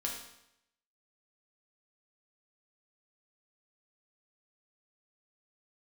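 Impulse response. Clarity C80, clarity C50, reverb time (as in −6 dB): 7.0 dB, 4.0 dB, 0.80 s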